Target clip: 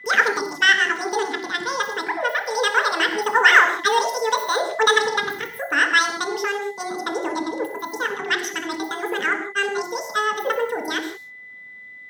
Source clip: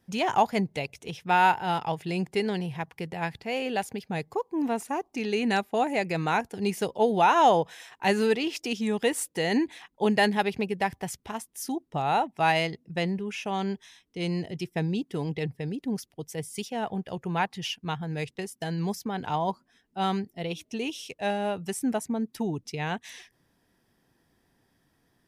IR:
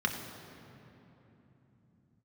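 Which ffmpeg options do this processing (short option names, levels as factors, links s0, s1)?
-filter_complex "[0:a]asetrate=92169,aresample=44100,aeval=exprs='val(0)+0.00447*sin(2*PI*2000*n/s)':c=same[s0];[1:a]atrim=start_sample=2205,afade=t=out:st=0.24:d=0.01,atrim=end_sample=11025[s1];[s0][s1]afir=irnorm=-1:irlink=0,volume=0.891"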